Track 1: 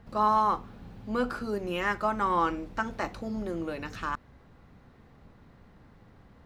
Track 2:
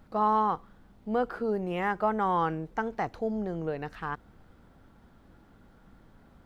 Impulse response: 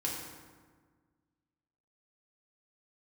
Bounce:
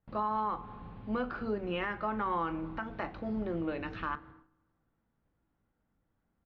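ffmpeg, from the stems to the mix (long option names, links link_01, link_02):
-filter_complex "[0:a]agate=range=-16dB:threshold=-49dB:ratio=16:detection=peak,volume=-2.5dB,asplit=2[link_01][link_02];[link_02]volume=-19.5dB[link_03];[1:a]flanger=delay=17.5:depth=4.6:speed=0.4,adelay=24,volume=-11dB,asplit=2[link_04][link_05];[link_05]volume=-15.5dB[link_06];[2:a]atrim=start_sample=2205[link_07];[link_03][link_06]amix=inputs=2:normalize=0[link_08];[link_08][link_07]afir=irnorm=-1:irlink=0[link_09];[link_01][link_04][link_09]amix=inputs=3:normalize=0,lowpass=frequency=3500:width=0.5412,lowpass=frequency=3500:width=1.3066,agate=range=-11dB:threshold=-56dB:ratio=16:detection=peak,alimiter=limit=-24dB:level=0:latency=1:release=229"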